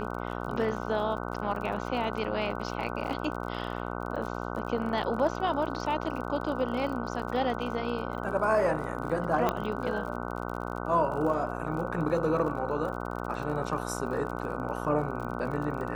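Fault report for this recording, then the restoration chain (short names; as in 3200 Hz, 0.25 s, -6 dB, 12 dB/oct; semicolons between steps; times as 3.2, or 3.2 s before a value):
buzz 60 Hz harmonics 25 -35 dBFS
crackle 41/s -37 dBFS
9.49 pop -13 dBFS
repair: de-click; de-hum 60 Hz, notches 25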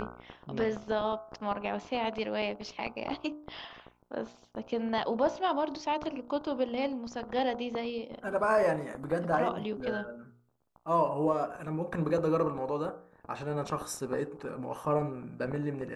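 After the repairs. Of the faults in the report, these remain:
none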